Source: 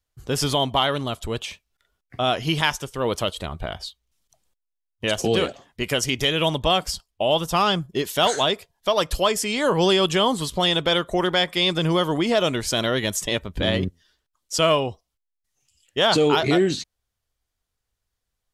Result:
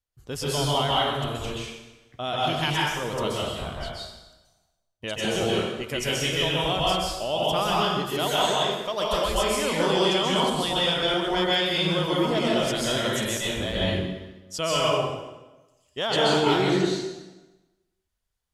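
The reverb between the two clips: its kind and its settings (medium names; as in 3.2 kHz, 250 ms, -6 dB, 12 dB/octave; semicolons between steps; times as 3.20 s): plate-style reverb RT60 1.1 s, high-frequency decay 0.85×, pre-delay 115 ms, DRR -6 dB; trim -9 dB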